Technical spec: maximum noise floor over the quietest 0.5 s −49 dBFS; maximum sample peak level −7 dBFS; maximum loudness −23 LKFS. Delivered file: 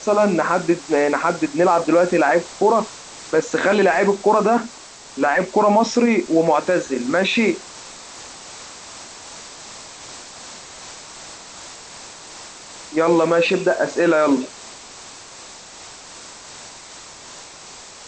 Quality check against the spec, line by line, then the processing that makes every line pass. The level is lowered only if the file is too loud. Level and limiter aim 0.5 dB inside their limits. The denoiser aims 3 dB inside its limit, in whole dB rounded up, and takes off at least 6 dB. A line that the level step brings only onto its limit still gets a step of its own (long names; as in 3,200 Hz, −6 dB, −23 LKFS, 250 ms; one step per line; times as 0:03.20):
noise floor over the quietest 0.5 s −40 dBFS: out of spec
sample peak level −4.0 dBFS: out of spec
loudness −18.0 LKFS: out of spec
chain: broadband denoise 7 dB, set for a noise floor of −40 dBFS
level −5.5 dB